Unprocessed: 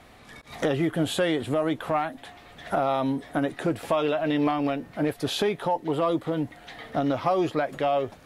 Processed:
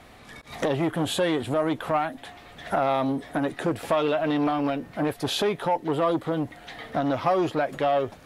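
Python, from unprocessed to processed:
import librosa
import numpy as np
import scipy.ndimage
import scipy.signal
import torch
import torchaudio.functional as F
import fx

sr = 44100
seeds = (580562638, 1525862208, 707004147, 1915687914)

y = fx.transformer_sat(x, sr, knee_hz=680.0)
y = y * 10.0 ** (2.0 / 20.0)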